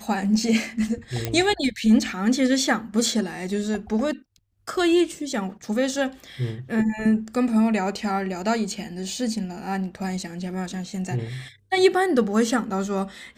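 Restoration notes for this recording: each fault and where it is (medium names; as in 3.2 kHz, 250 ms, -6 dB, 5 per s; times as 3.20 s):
1.25 s: pop -9 dBFS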